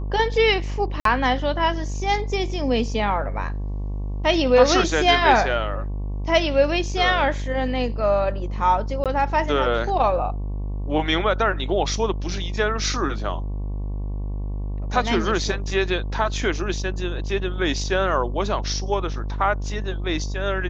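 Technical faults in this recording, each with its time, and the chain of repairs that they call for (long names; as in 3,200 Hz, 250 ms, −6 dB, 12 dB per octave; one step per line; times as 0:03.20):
mains buzz 50 Hz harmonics 23 −27 dBFS
0:01.00–0:01.05: drop-out 53 ms
0:09.04–0:09.06: drop-out 17 ms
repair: hum removal 50 Hz, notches 23
repair the gap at 0:01.00, 53 ms
repair the gap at 0:09.04, 17 ms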